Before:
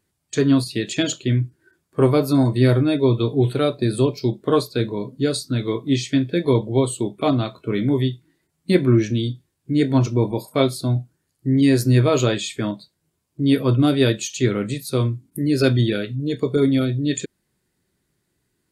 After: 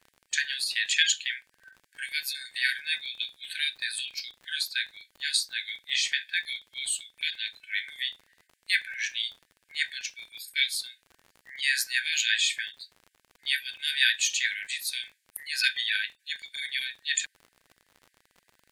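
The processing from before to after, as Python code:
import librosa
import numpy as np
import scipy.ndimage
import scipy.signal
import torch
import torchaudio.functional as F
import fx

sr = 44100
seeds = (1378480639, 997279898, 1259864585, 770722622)

y = fx.brickwall_highpass(x, sr, low_hz=1500.0)
y = fx.dmg_crackle(y, sr, seeds[0], per_s=42.0, level_db=-44.0)
y = fx.high_shelf(y, sr, hz=3200.0, db=-8.5)
y = F.gain(torch.from_numpy(y), 8.5).numpy()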